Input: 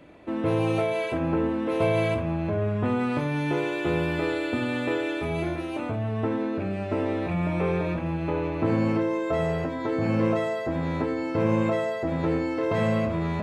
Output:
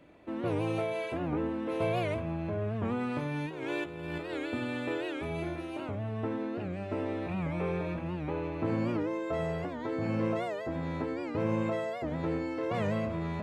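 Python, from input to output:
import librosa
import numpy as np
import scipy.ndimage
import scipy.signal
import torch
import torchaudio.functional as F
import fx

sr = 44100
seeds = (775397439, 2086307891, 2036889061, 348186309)

y = fx.over_compress(x, sr, threshold_db=-29.0, ratio=-0.5, at=(3.46, 4.35))
y = fx.record_warp(y, sr, rpm=78.0, depth_cents=160.0)
y = F.gain(torch.from_numpy(y), -7.0).numpy()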